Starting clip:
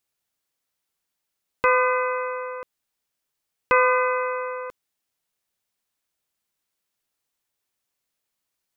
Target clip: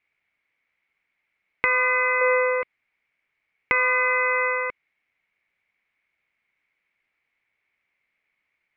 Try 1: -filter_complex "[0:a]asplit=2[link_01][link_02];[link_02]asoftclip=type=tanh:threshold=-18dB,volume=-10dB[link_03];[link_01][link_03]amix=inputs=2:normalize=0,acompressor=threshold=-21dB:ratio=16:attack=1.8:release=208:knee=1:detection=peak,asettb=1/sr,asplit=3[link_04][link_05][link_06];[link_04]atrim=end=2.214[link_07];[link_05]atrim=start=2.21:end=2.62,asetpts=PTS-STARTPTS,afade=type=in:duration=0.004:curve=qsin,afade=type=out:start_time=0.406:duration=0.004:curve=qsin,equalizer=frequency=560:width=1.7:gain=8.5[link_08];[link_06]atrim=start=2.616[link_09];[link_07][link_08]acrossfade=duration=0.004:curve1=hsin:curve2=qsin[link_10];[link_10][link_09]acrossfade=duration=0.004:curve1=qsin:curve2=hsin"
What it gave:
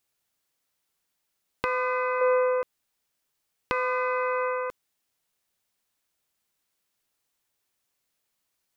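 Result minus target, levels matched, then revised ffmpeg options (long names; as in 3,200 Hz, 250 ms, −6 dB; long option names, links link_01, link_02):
2,000 Hz band −5.0 dB
-filter_complex "[0:a]asplit=2[link_01][link_02];[link_02]asoftclip=type=tanh:threshold=-18dB,volume=-10dB[link_03];[link_01][link_03]amix=inputs=2:normalize=0,acompressor=threshold=-21dB:ratio=16:attack=1.8:release=208:knee=1:detection=peak,lowpass=frequency=2200:width_type=q:width=9.6,asettb=1/sr,asplit=3[link_04][link_05][link_06];[link_04]atrim=end=2.214[link_07];[link_05]atrim=start=2.21:end=2.62,asetpts=PTS-STARTPTS,afade=type=in:duration=0.004:curve=qsin,afade=type=out:start_time=0.406:duration=0.004:curve=qsin,equalizer=frequency=560:width=1.7:gain=8.5[link_08];[link_06]atrim=start=2.616[link_09];[link_07][link_08]acrossfade=duration=0.004:curve1=hsin:curve2=qsin[link_10];[link_10][link_09]acrossfade=duration=0.004:curve1=qsin:curve2=hsin"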